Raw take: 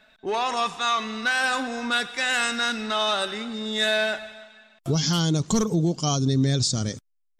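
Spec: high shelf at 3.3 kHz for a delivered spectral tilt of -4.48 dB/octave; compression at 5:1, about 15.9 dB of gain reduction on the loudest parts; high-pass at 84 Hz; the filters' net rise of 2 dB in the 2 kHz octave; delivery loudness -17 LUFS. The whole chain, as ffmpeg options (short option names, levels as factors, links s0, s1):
-af "highpass=84,equalizer=f=2000:t=o:g=5,highshelf=f=3300:g=-7,acompressor=threshold=0.0141:ratio=5,volume=11.9"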